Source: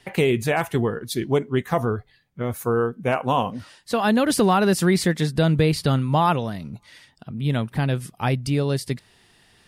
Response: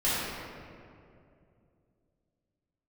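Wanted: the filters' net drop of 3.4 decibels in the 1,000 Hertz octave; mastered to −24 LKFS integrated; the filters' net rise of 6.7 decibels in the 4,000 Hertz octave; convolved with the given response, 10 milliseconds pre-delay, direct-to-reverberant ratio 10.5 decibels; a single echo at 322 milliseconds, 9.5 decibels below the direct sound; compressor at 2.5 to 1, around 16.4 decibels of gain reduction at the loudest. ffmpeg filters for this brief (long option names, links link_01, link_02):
-filter_complex "[0:a]equalizer=frequency=1000:width_type=o:gain=-5,equalizer=frequency=4000:width_type=o:gain=8.5,acompressor=threshold=-41dB:ratio=2.5,aecho=1:1:322:0.335,asplit=2[link_01][link_02];[1:a]atrim=start_sample=2205,adelay=10[link_03];[link_02][link_03]afir=irnorm=-1:irlink=0,volume=-23dB[link_04];[link_01][link_04]amix=inputs=2:normalize=0,volume=13dB"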